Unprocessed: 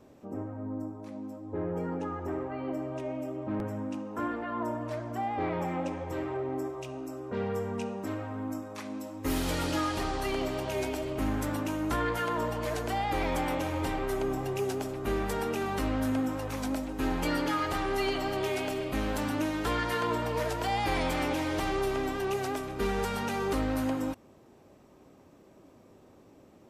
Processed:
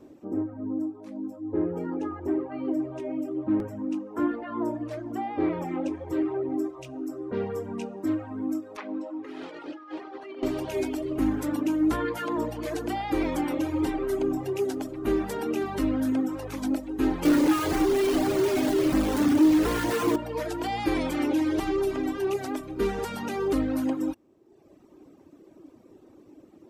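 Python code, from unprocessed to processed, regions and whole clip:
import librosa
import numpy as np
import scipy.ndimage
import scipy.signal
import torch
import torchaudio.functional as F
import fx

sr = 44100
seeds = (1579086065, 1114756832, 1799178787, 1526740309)

y = fx.chain(x, sr, fx.bandpass_edges(low_hz=390.0, high_hz=2600.0),
    fx.over_compress(threshold_db=-41.0, ratio=-1.0), at=(8.77, 10.43))
y = fx.chain(y, sr, fx.high_shelf(hz=2100.0, db=-11.0),
    fx.quant_companded(bits=2), at=(17.25, 20.16))
y = fx.dereverb_blind(y, sr, rt60_s=1.1)
y = fx.peak_eq(y, sr, hz=320.0, db=13.0, octaves=0.61)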